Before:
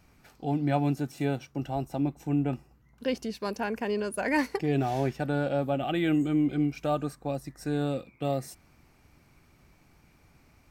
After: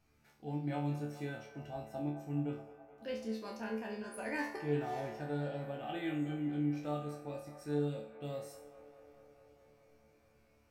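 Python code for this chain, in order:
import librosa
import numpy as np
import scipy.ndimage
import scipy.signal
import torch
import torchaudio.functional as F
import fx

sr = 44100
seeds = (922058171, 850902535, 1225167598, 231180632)

y = fx.resonator_bank(x, sr, root=38, chord='fifth', decay_s=0.48)
y = fx.echo_wet_bandpass(y, sr, ms=212, feedback_pct=78, hz=970.0, wet_db=-12.0)
y = F.gain(torch.from_numpy(y), 2.0).numpy()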